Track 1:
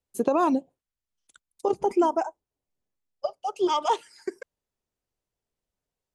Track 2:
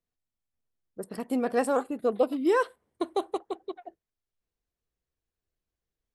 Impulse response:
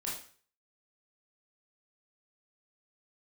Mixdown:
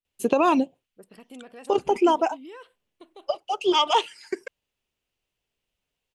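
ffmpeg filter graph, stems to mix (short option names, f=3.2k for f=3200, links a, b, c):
-filter_complex "[0:a]adelay=50,volume=2dB[a];[1:a]alimiter=level_in=1dB:limit=-24dB:level=0:latency=1:release=112,volume=-1dB,volume=-12dB[b];[a][b]amix=inputs=2:normalize=0,equalizer=f=2.8k:t=o:w=0.83:g=13"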